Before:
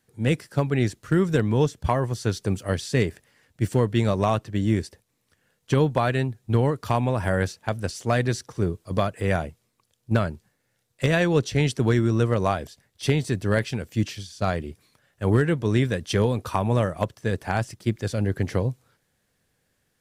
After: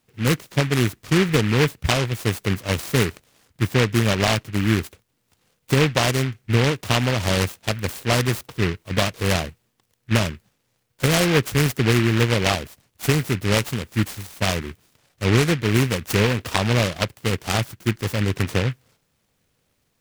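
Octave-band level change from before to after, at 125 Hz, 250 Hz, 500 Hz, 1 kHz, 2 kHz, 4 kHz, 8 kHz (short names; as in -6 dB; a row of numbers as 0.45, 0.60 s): +2.5, +2.0, +1.0, +1.5, +7.0, +11.0, +10.0 dB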